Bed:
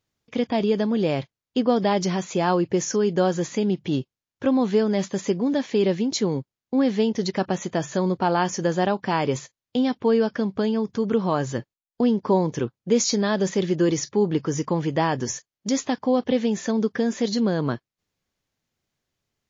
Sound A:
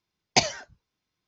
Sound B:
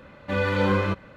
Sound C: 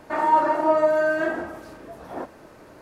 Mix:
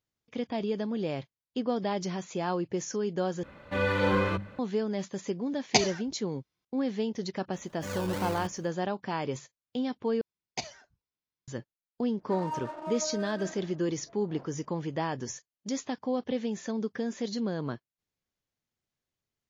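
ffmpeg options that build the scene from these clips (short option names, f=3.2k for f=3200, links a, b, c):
-filter_complex "[2:a]asplit=2[a][b];[1:a]asplit=2[c][d];[0:a]volume=-9.5dB[e];[a]bandreject=f=50:t=h:w=6,bandreject=f=100:t=h:w=6,bandreject=f=150:t=h:w=6,bandreject=f=200:t=h:w=6,bandreject=f=250:t=h:w=6,bandreject=f=300:t=h:w=6,bandreject=f=350:t=h:w=6[f];[b]acrusher=samples=17:mix=1:aa=0.000001:lfo=1:lforange=10.2:lforate=2.4[g];[3:a]adynamicsmooth=sensitivity=5:basefreq=890[h];[e]asplit=3[i][j][k];[i]atrim=end=3.434[l];[f]atrim=end=1.16,asetpts=PTS-STARTPTS,volume=-2.5dB[m];[j]atrim=start=4.586:end=10.214[n];[d]atrim=end=1.27,asetpts=PTS-STARTPTS,volume=-15dB[o];[k]atrim=start=11.476[p];[c]atrim=end=1.27,asetpts=PTS-STARTPTS,volume=-3dB,afade=t=in:d=0.004:c=hsin,afade=t=out:st=1.266:d=0.004:c=hsin,adelay=5380[q];[g]atrim=end=1.16,asetpts=PTS-STARTPTS,volume=-12.5dB,afade=t=in:d=0.004:c=hsin,afade=t=out:st=1.156:d=0.004:c=hsin,adelay=7530[r];[h]atrim=end=2.81,asetpts=PTS-STARTPTS,volume=-18dB,afade=t=in:d=0.004:c=hsin,afade=t=out:st=2.806:d=0.004:c=hsin,adelay=12190[s];[l][m]acrossfade=d=0.004:c1=hsin:c2=hsin[t];[t][n]acrossfade=d=0.004:c1=hsin:c2=hsin[u];[u][o]acrossfade=d=0.004:c1=hsin:c2=hsin[v];[v][p]acrossfade=d=0.004:c1=hsin:c2=hsin[w];[w][q][r][s]amix=inputs=4:normalize=0"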